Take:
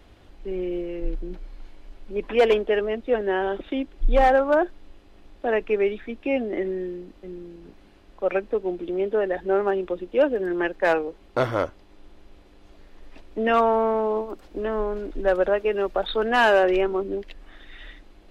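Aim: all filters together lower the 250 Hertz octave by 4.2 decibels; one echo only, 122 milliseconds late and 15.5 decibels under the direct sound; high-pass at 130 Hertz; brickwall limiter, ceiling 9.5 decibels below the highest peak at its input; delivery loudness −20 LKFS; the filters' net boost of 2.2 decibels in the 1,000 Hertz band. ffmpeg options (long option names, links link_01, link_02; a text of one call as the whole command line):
ffmpeg -i in.wav -af "highpass=130,equalizer=frequency=250:width_type=o:gain=-6.5,equalizer=frequency=1000:width_type=o:gain=3.5,alimiter=limit=-16dB:level=0:latency=1,aecho=1:1:122:0.168,volume=7.5dB" out.wav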